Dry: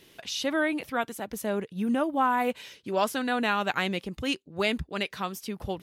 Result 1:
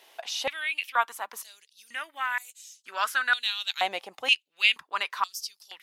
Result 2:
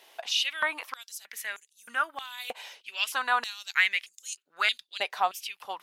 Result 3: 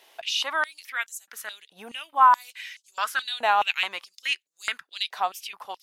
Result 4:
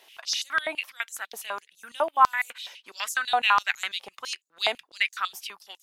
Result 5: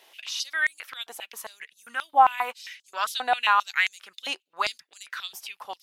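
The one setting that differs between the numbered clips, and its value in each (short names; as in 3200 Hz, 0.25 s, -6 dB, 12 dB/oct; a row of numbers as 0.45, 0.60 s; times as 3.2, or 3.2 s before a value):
stepped high-pass, rate: 2.1, 3.2, 4.7, 12, 7.5 Hz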